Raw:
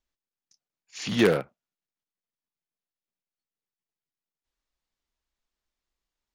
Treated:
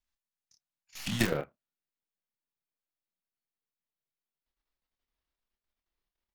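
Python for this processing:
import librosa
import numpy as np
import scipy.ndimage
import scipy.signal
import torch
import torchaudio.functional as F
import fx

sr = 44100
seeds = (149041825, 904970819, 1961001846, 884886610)

y = fx.tracing_dist(x, sr, depth_ms=0.3)
y = fx.peak_eq(y, sr, hz=fx.steps((0.0, 420.0), (1.31, 7700.0)), db=-13.0, octaves=0.71)
y = fx.level_steps(y, sr, step_db=11)
y = fx.doubler(y, sr, ms=27.0, db=-6.0)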